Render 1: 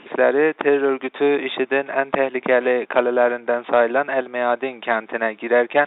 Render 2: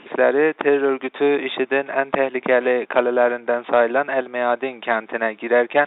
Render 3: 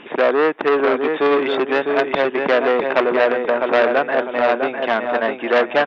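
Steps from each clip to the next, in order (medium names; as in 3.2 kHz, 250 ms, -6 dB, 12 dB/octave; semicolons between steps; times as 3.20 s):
no audible change
dynamic bell 2.5 kHz, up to -3 dB, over -30 dBFS, Q 0.92; on a send: feedback delay 653 ms, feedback 31%, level -6 dB; on the sum: transformer saturation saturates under 1.5 kHz; trim +3.5 dB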